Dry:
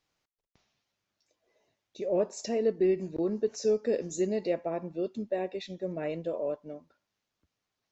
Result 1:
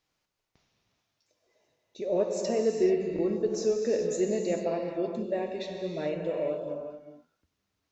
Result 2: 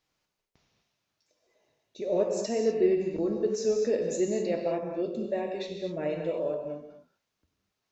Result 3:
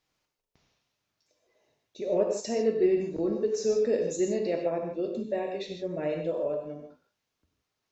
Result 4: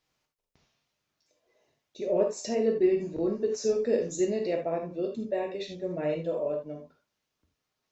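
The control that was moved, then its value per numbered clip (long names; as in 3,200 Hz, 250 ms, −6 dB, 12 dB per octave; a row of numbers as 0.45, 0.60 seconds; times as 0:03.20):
reverb whose tail is shaped and stops, gate: 460, 270, 180, 100 milliseconds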